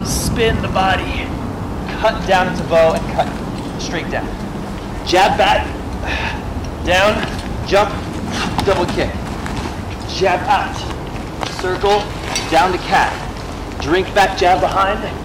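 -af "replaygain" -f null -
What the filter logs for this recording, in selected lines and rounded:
track_gain = -4.4 dB
track_peak = 0.318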